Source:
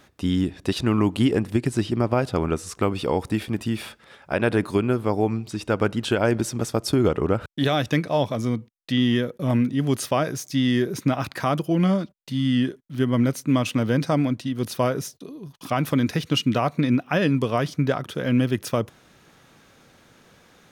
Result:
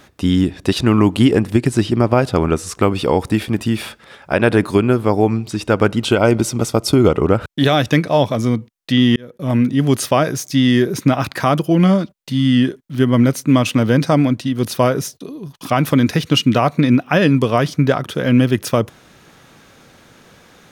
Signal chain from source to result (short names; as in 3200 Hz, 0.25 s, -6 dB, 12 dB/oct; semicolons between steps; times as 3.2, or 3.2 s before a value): 5.96–7.28 Butterworth band-stop 1700 Hz, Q 6.1; 9.16–9.69 fade in; gain +7.5 dB